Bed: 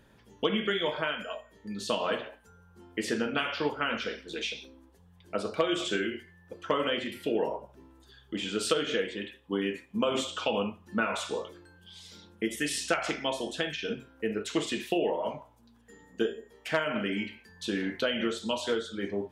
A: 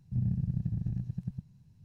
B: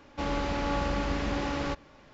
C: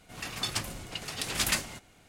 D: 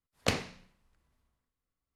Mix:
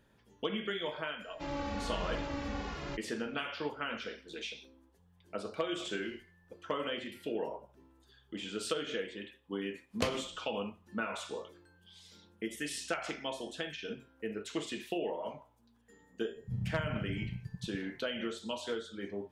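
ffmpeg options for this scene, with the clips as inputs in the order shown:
-filter_complex "[4:a]asplit=2[s0][s1];[0:a]volume=0.422[s2];[2:a]asplit=2[s3][s4];[s4]adelay=2.4,afreqshift=-1.3[s5];[s3][s5]amix=inputs=2:normalize=1[s6];[s0]acompressor=threshold=0.00562:ratio=6:attack=3.2:release=140:knee=1:detection=peak[s7];[s1]tremolo=f=9.6:d=0.52[s8];[s6]atrim=end=2.13,asetpts=PTS-STARTPTS,volume=0.562,afade=t=in:d=0.004:c=hsin,afade=t=out:st=2.126:d=0.004:c=hsin,adelay=1220[s9];[s7]atrim=end=1.95,asetpts=PTS-STARTPTS,volume=0.316,afade=t=in:d=0.004:c=hsin,afade=t=out:st=1.946:d=0.004:c=hsin,adelay=5590[s10];[s8]atrim=end=1.95,asetpts=PTS-STARTPTS,volume=0.668,afade=t=in:d=0.004:c=hsin,afade=t=out:st=1.946:d=0.004:c=hsin,adelay=9740[s11];[1:a]atrim=end=1.84,asetpts=PTS-STARTPTS,volume=0.473,afade=t=in:d=0.004:c=hsin,afade=t=out:st=1.836:d=0.004:c=hsin,adelay=721476S[s12];[s2][s9][s10][s11][s12]amix=inputs=5:normalize=0"

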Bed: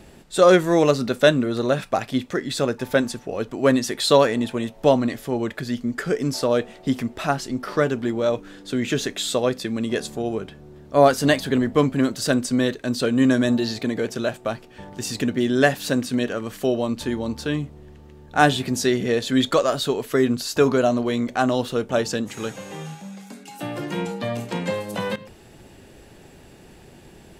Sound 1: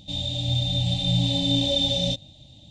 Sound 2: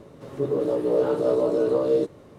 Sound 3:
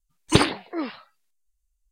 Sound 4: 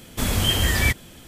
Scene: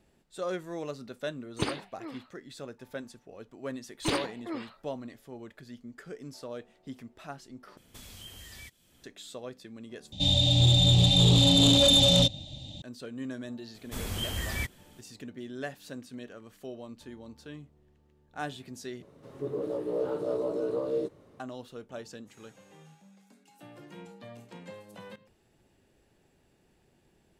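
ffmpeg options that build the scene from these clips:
-filter_complex "[3:a]asplit=2[s0][s1];[4:a]asplit=2[s2][s3];[0:a]volume=0.1[s4];[s1]asoftclip=type=tanh:threshold=0.188[s5];[s2]acrossover=split=2900|5900[s6][s7][s8];[s6]acompressor=threshold=0.0178:ratio=4[s9];[s7]acompressor=threshold=0.02:ratio=4[s10];[s8]acompressor=threshold=0.0126:ratio=4[s11];[s9][s10][s11]amix=inputs=3:normalize=0[s12];[1:a]aeval=exprs='0.282*sin(PI/2*2.24*val(0)/0.282)':c=same[s13];[s4]asplit=4[s14][s15][s16][s17];[s14]atrim=end=7.774[s18];[s12]atrim=end=1.27,asetpts=PTS-STARTPTS,volume=0.15[s19];[s15]atrim=start=9.036:end=10.124[s20];[s13]atrim=end=2.7,asetpts=PTS-STARTPTS,volume=0.562[s21];[s16]atrim=start=12.816:end=19.024[s22];[2:a]atrim=end=2.38,asetpts=PTS-STARTPTS,volume=0.355[s23];[s17]atrim=start=21.396[s24];[s0]atrim=end=1.91,asetpts=PTS-STARTPTS,volume=0.211,afade=t=in:d=0.004:c=hsin,afade=t=out:st=1.906:d=0.004:c=hsin,adelay=1270[s25];[s5]atrim=end=1.91,asetpts=PTS-STARTPTS,volume=0.422,afade=t=in:d=0.004:c=hsin,afade=t=out:st=1.906:d=0.004:c=hsin,adelay=164493S[s26];[s3]atrim=end=1.27,asetpts=PTS-STARTPTS,volume=0.224,afade=t=in:d=0.004:c=hsin,afade=t=out:st=1.266:d=0.004:c=hsin,adelay=13740[s27];[s18][s19]acrossfade=d=0.004:c1=hsin:c2=hsin[s28];[s28][s20]acrossfade=d=0.004:c1=hsin:c2=hsin[s29];[s29][s21]acrossfade=d=0.004:c1=hsin:c2=hsin[s30];[s30][s22]acrossfade=d=0.004:c1=hsin:c2=hsin[s31];[s31][s23]acrossfade=d=0.004:c1=hsin:c2=hsin[s32];[s32][s24]acrossfade=d=0.004:c1=hsin:c2=hsin[s33];[s33][s25][s26][s27]amix=inputs=4:normalize=0"

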